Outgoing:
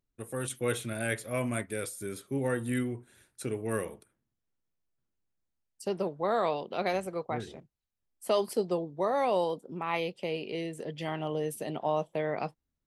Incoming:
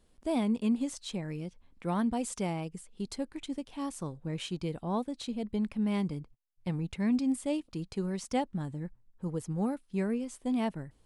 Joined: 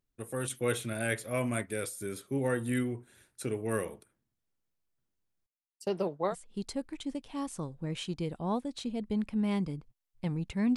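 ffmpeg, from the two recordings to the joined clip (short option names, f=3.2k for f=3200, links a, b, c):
-filter_complex "[0:a]asettb=1/sr,asplit=3[a][b][c];[a]atrim=end=5.464[d];[b]atrim=start=5.46:end=6.35,asetpts=PTS-STARTPTS,afade=t=in:d=0.004:c=qsin,afade=t=out:st=0.886:d=0.004:c=qsin,agate=range=-33dB:threshold=-44dB:ratio=3:release=100:detection=peak[e];[c]atrim=start=6.346[f];[d][e]acrossfade=d=0.004:c1=hsin:c2=qsin[g];[g][f]acrossfade=d=0.004:c1=qsin:c2=hsin,apad=whole_dur=10.76,atrim=end=10.76,atrim=end=6.35,asetpts=PTS-STARTPTS[h];[1:a]atrim=start=2.7:end=7.19,asetpts=PTS-STARTPTS[i];[h][i]acrossfade=d=0.08:c1=tri:c2=tri"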